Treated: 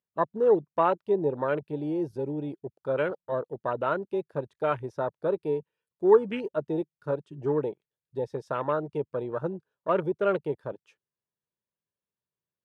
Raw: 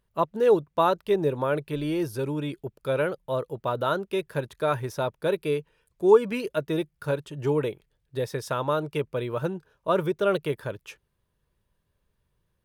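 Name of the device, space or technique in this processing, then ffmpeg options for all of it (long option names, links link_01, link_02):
over-cleaned archive recording: -af "highpass=160,lowpass=7500,afwtdn=0.0224,volume=-1.5dB"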